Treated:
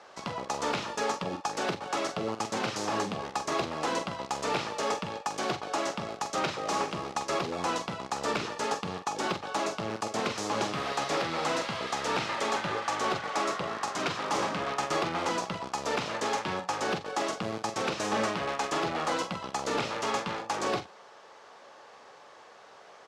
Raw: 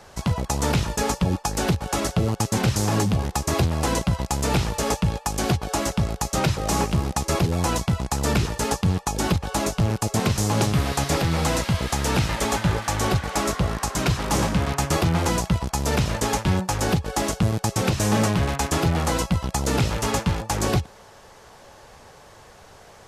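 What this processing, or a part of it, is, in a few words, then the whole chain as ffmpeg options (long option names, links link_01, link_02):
intercom: -filter_complex "[0:a]highpass=350,lowpass=5000,equalizer=frequency=1200:width_type=o:width=0.21:gain=4.5,asoftclip=type=tanh:threshold=-13.5dB,asplit=2[link_01][link_02];[link_02]adelay=45,volume=-9dB[link_03];[link_01][link_03]amix=inputs=2:normalize=0,volume=-4dB"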